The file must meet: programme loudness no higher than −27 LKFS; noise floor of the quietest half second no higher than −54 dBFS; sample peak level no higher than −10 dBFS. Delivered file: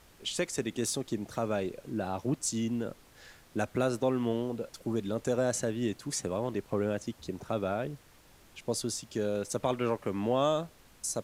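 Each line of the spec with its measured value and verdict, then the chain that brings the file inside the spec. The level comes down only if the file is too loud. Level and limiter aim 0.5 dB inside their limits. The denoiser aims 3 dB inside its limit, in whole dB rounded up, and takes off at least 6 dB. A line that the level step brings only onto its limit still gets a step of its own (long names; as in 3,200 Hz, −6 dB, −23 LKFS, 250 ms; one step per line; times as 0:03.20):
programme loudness −33.0 LKFS: in spec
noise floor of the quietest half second −58 dBFS: in spec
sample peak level −16.0 dBFS: in spec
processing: no processing needed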